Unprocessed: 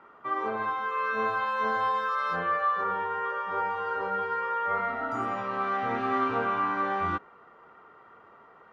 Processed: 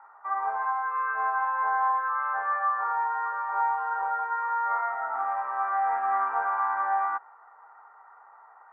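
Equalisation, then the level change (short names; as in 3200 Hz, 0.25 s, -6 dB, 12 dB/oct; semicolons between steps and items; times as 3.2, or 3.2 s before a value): resonant high-pass 830 Hz, resonance Q 8.2; ladder low-pass 2000 Hz, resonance 55%; air absorption 440 m; +2.5 dB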